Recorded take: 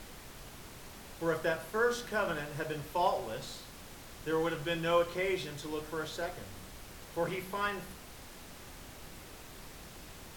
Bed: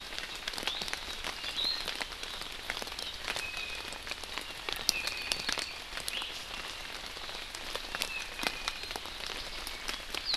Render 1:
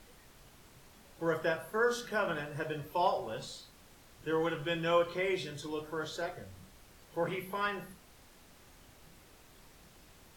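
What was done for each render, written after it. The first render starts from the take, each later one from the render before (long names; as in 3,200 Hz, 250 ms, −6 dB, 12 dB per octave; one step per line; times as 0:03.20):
noise reduction from a noise print 9 dB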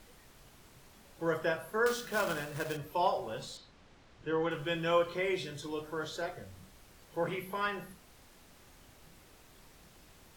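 0:01.86–0:02.77: log-companded quantiser 4 bits
0:03.57–0:04.51: high-frequency loss of the air 120 metres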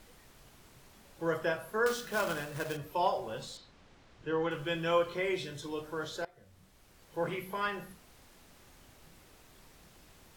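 0:06.25–0:07.25: fade in, from −21 dB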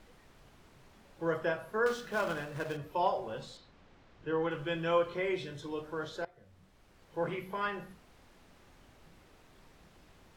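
low-pass filter 2,900 Hz 6 dB per octave
mains-hum notches 60/120 Hz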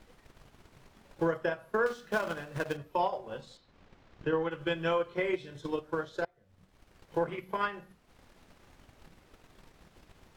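transient designer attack +11 dB, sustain −7 dB
brickwall limiter −19.5 dBFS, peak gain reduction 9 dB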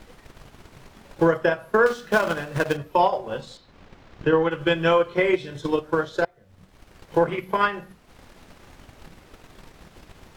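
level +10.5 dB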